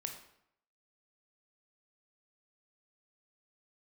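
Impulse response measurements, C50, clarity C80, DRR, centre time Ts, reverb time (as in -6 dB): 7.5 dB, 10.0 dB, 3.5 dB, 21 ms, 0.75 s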